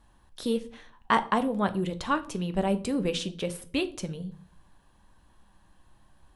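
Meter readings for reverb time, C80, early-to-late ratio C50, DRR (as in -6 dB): 0.50 s, 21.5 dB, 17.5 dB, 9.5 dB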